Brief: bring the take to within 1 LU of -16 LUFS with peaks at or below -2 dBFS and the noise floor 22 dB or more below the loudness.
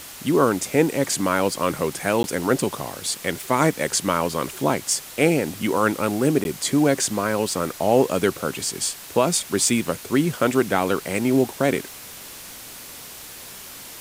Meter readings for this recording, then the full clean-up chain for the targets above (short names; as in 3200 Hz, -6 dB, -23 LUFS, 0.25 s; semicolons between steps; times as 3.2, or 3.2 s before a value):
dropouts 2; longest dropout 11 ms; noise floor -39 dBFS; noise floor target -44 dBFS; loudness -22.0 LUFS; peak -3.5 dBFS; loudness target -16.0 LUFS
-> interpolate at 2.23/6.44, 11 ms; denoiser 6 dB, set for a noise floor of -39 dBFS; gain +6 dB; limiter -2 dBFS